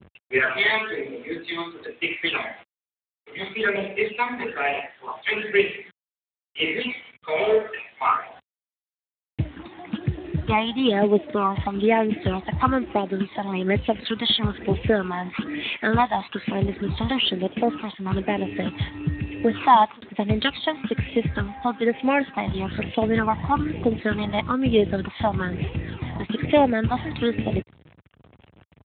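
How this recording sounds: phasing stages 12, 1.1 Hz, lowest notch 450–1400 Hz; a quantiser's noise floor 8-bit, dither none; Speex

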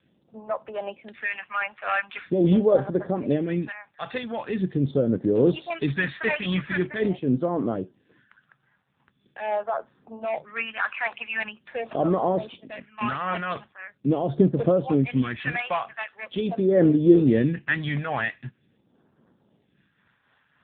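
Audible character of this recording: tremolo triangle 3.7 Hz, depth 45%; phasing stages 2, 0.43 Hz, lowest notch 320–2500 Hz; AMR-NB

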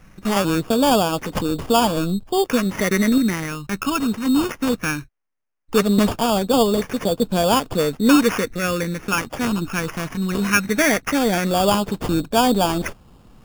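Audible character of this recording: phasing stages 6, 0.18 Hz, lowest notch 580–2100 Hz; aliases and images of a low sample rate 4000 Hz, jitter 0%

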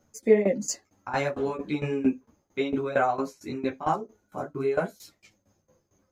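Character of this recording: tremolo saw down 4.4 Hz, depth 90%; a shimmering, thickened sound

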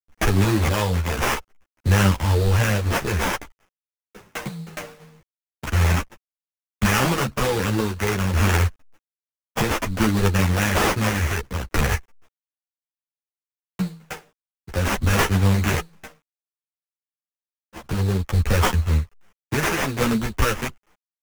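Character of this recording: a quantiser's noise floor 10-bit, dither none; tremolo saw down 0.6 Hz, depth 50%; aliases and images of a low sample rate 4200 Hz, jitter 20%; a shimmering, thickened sound

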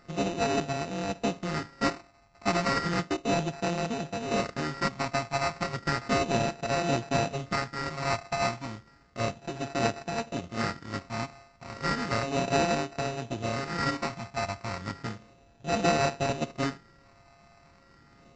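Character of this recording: a buzz of ramps at a fixed pitch in blocks of 64 samples; phasing stages 8, 0.33 Hz, lowest notch 420–2400 Hz; aliases and images of a low sample rate 3300 Hz, jitter 0%; Vorbis

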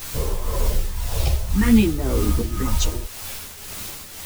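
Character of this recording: phasing stages 4, 0.59 Hz, lowest notch 240–2900 Hz; a quantiser's noise floor 6-bit, dither triangular; tremolo triangle 1.9 Hz, depth 65%; a shimmering, thickened sound

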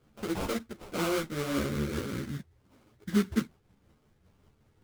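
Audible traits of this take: phasing stages 8, 2.1 Hz, lowest notch 800–1700 Hz; aliases and images of a low sample rate 1800 Hz, jitter 20%; tremolo triangle 5.2 Hz, depth 45%; a shimmering, thickened sound

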